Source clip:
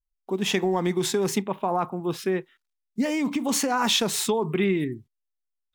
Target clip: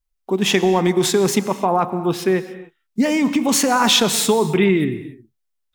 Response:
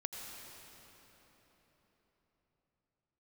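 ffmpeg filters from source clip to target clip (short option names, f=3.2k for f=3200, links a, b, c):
-filter_complex "[0:a]asplit=2[a][b];[1:a]atrim=start_sample=2205,afade=t=out:st=0.35:d=0.01,atrim=end_sample=15876[c];[b][c]afir=irnorm=-1:irlink=0,volume=-3.5dB[d];[a][d]amix=inputs=2:normalize=0,volume=4dB"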